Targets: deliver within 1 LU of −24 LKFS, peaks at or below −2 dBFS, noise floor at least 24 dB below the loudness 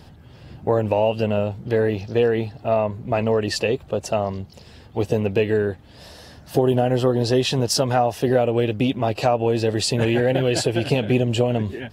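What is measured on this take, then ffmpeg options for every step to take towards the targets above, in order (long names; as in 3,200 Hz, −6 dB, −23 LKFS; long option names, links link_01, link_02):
integrated loudness −21.5 LKFS; sample peak −5.5 dBFS; target loudness −24.0 LKFS
→ -af "volume=-2.5dB"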